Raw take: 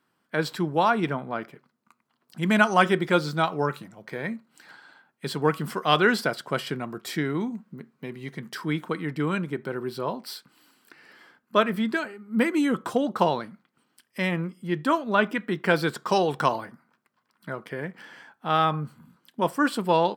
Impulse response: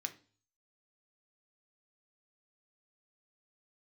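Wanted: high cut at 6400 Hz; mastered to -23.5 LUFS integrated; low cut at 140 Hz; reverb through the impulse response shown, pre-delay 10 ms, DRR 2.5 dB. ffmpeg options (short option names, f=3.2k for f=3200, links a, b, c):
-filter_complex "[0:a]highpass=140,lowpass=6.4k,asplit=2[a][b];[1:a]atrim=start_sample=2205,adelay=10[c];[b][c]afir=irnorm=-1:irlink=0,volume=-1.5dB[d];[a][d]amix=inputs=2:normalize=0,volume=1.5dB"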